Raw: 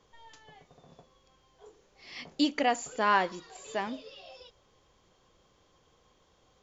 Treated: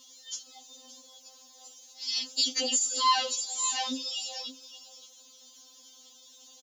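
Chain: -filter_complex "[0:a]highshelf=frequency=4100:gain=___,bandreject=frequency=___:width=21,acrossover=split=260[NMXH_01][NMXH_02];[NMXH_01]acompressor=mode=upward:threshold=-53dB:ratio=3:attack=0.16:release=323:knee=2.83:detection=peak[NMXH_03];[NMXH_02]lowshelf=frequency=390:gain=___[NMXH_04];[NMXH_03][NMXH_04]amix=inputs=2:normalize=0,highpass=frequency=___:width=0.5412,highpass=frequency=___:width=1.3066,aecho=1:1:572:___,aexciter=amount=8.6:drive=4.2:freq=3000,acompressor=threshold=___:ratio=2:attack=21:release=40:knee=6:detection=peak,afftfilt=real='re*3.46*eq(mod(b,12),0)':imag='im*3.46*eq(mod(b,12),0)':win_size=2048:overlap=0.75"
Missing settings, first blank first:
7.5, 2400, -2, 180, 180, 0.168, -31dB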